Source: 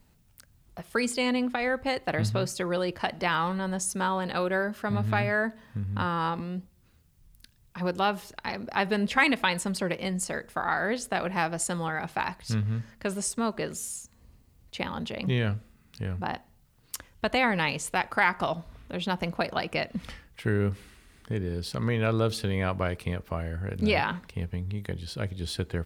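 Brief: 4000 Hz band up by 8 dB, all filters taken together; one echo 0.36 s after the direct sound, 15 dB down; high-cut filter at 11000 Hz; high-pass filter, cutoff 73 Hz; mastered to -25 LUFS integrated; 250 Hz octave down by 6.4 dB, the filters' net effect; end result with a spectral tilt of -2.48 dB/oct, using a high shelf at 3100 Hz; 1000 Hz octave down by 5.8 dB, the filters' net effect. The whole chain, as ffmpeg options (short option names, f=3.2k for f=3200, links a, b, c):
-af "highpass=73,lowpass=11k,equalizer=f=250:t=o:g=-8.5,equalizer=f=1k:t=o:g=-8.5,highshelf=f=3.1k:g=8,equalizer=f=4k:t=o:g=5,aecho=1:1:360:0.178,volume=3.5dB"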